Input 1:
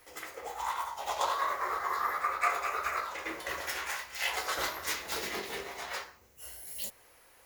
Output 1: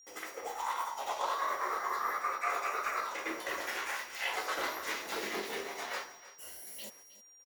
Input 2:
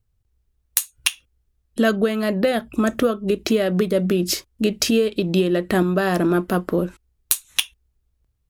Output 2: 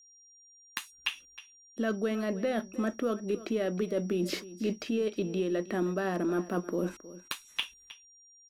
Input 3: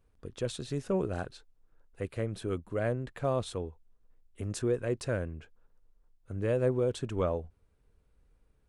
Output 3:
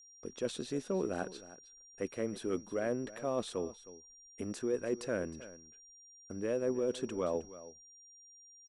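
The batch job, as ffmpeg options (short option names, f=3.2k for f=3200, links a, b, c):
-filter_complex "[0:a]acrossover=split=3300[a][b];[b]acompressor=threshold=-42dB:ratio=4:attack=1:release=60[c];[a][c]amix=inputs=2:normalize=0,agate=range=-25dB:threshold=-57dB:ratio=16:detection=peak,lowshelf=f=160:t=q:w=1.5:g=-11,areverse,acompressor=threshold=-30dB:ratio=4,areverse,aeval=exprs='val(0)+0.00158*sin(2*PI*5700*n/s)':c=same,aeval=exprs='0.211*(cos(1*acos(clip(val(0)/0.211,-1,1)))-cos(1*PI/2))+0.00266*(cos(4*acos(clip(val(0)/0.211,-1,1)))-cos(4*PI/2))':c=same,aecho=1:1:314:0.15"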